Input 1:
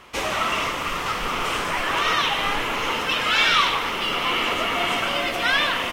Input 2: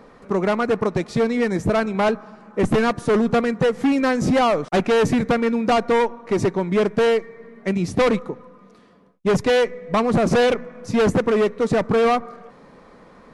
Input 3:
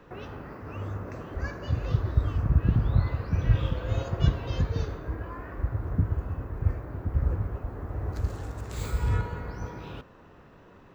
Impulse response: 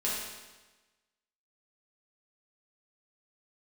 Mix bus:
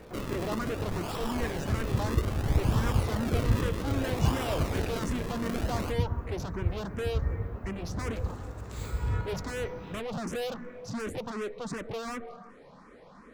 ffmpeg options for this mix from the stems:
-filter_complex "[0:a]acrossover=split=390[a][b];[b]acompressor=threshold=-38dB:ratio=2[c];[a][c]amix=inputs=2:normalize=0,acrusher=samples=40:mix=1:aa=0.000001:lfo=1:lforange=40:lforate=0.62,volume=-4dB[d];[1:a]asoftclip=type=tanh:threshold=-28dB,asplit=2[e][f];[f]afreqshift=2.7[g];[e][g]amix=inputs=2:normalize=1,volume=-2.5dB[h];[2:a]volume=-4dB[i];[d][h][i]amix=inputs=3:normalize=0"

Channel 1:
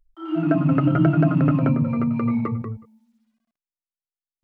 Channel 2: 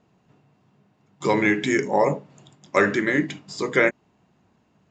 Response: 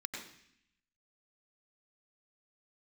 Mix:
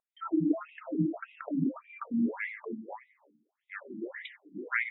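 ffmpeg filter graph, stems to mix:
-filter_complex "[0:a]acompressor=threshold=-25dB:ratio=6,volume=3dB[a];[1:a]adelay=950,volume=0.5dB,afade=t=out:st=2.22:d=0.47:silence=0.334965,afade=t=in:st=3.82:d=0.37:silence=0.251189,asplit=2[b][c];[c]volume=-7dB[d];[2:a]atrim=start_sample=2205[e];[d][e]afir=irnorm=-1:irlink=0[f];[a][b][f]amix=inputs=3:normalize=0,afftfilt=real='re*between(b*sr/1024,230*pow(2800/230,0.5+0.5*sin(2*PI*1.7*pts/sr))/1.41,230*pow(2800/230,0.5+0.5*sin(2*PI*1.7*pts/sr))*1.41)':imag='im*between(b*sr/1024,230*pow(2800/230,0.5+0.5*sin(2*PI*1.7*pts/sr))/1.41,230*pow(2800/230,0.5+0.5*sin(2*PI*1.7*pts/sr))*1.41)':win_size=1024:overlap=0.75"

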